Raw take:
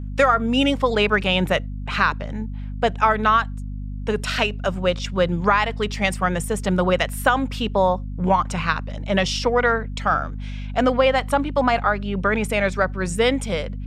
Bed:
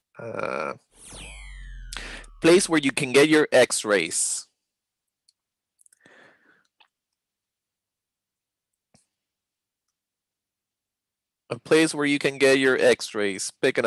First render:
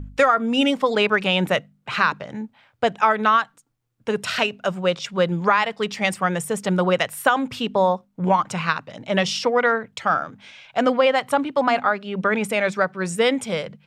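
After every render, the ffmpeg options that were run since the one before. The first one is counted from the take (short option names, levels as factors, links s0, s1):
-af "bandreject=f=50:t=h:w=4,bandreject=f=100:t=h:w=4,bandreject=f=150:t=h:w=4,bandreject=f=200:t=h:w=4,bandreject=f=250:t=h:w=4"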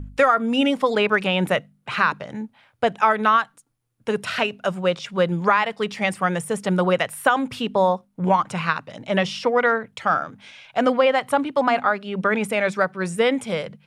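-filter_complex "[0:a]acrossover=split=3200[s0][s1];[s1]acompressor=threshold=0.0158:ratio=4:attack=1:release=60[s2];[s0][s2]amix=inputs=2:normalize=0,equalizer=f=10000:t=o:w=0.25:g=9"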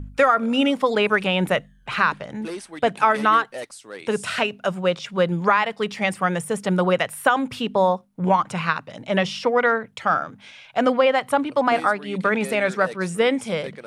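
-filter_complex "[1:a]volume=0.15[s0];[0:a][s0]amix=inputs=2:normalize=0"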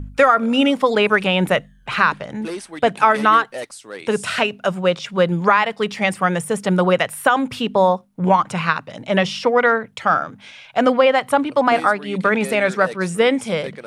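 -af "volume=1.5,alimiter=limit=0.891:level=0:latency=1"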